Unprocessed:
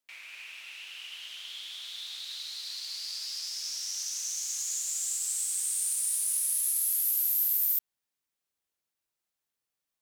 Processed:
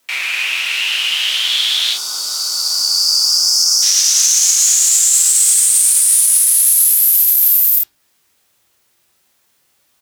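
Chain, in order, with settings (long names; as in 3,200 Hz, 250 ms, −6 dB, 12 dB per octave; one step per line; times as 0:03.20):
gain on a spectral selection 0:01.93–0:03.83, 1,500–4,400 Hz −21 dB
in parallel at +2 dB: downward compressor, threshold −38 dBFS, peak gain reduction 13.5 dB
on the sum: frequency shifter +23 Hz
ambience of single reflections 25 ms −6 dB, 46 ms −8.5 dB
on a send at −9 dB: convolution reverb RT60 0.35 s, pre-delay 4 ms
on the sum: boost into a limiter +19 dB
level −1 dB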